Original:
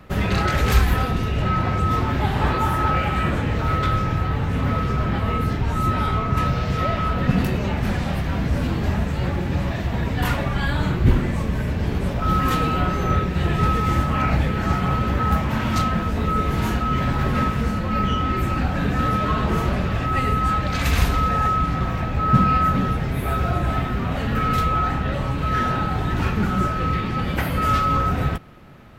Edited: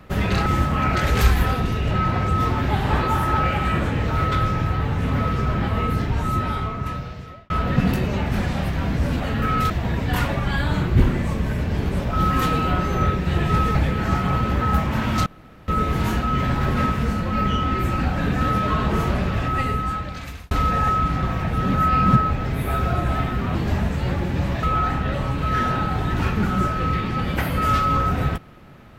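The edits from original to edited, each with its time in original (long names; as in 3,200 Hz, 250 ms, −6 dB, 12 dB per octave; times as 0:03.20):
0:05.64–0:07.01: fade out
0:08.71–0:09.79: swap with 0:24.13–0:24.63
0:13.84–0:14.33: move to 0:00.46
0:15.84–0:16.26: fill with room tone
0:20.04–0:21.09: fade out
0:22.05–0:23.03: reverse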